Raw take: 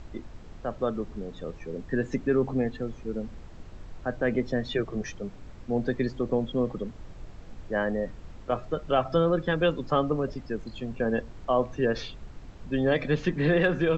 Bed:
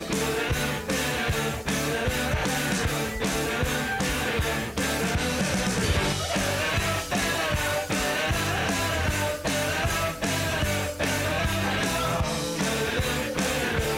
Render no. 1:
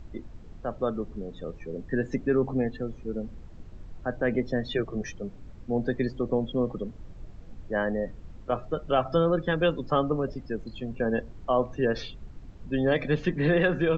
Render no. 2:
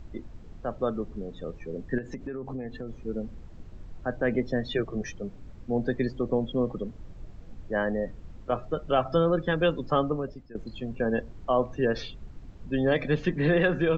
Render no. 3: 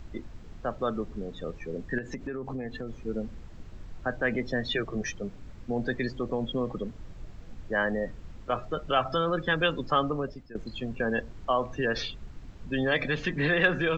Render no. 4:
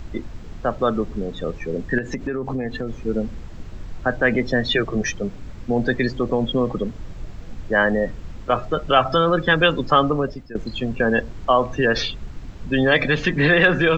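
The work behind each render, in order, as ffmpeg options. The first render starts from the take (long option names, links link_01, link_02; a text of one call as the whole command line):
ffmpeg -i in.wav -af "afftdn=noise_reduction=7:noise_floor=-46" out.wav
ffmpeg -i in.wav -filter_complex "[0:a]asettb=1/sr,asplit=3[link_01][link_02][link_03];[link_01]atrim=end=1.984[link_04];[link_02]atrim=start=1.98:end=3.01,asetpts=PTS-STARTPTS,afade=type=in:duration=0.004:curve=qsin,afade=type=out:start_time=1.026:duration=0.004:curve=qsin,acompressor=threshold=-31dB:ratio=10:attack=3.2:release=140:knee=1:detection=peak[link_05];[link_03]atrim=start=3.006[link_06];[link_04][link_05]acrossfade=duration=0.004:curve1=hsin:curve2=qsin[link_07];[link_07][link_06]acrossfade=duration=0.004:curve1=qsin:curve2=hsin,asplit=2[link_08][link_09];[link_08]atrim=end=10.55,asetpts=PTS-STARTPTS,afade=type=out:start_time=10.02:duration=0.53:silence=0.141254[link_10];[link_09]atrim=start=10.55,asetpts=PTS-STARTPTS,afade=type=in:duration=0.004:curve=hsin:silence=0.141254[link_11];[link_10][link_11]concat=n=2:v=0:a=1" out.wav
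ffmpeg -i in.wav -filter_complex "[0:a]acrossover=split=1000[link_01][link_02];[link_01]alimiter=limit=-22dB:level=0:latency=1[link_03];[link_02]acontrast=32[link_04];[link_03][link_04]amix=inputs=2:normalize=0" out.wav
ffmpeg -i in.wav -af "volume=9.5dB,alimiter=limit=-3dB:level=0:latency=1" out.wav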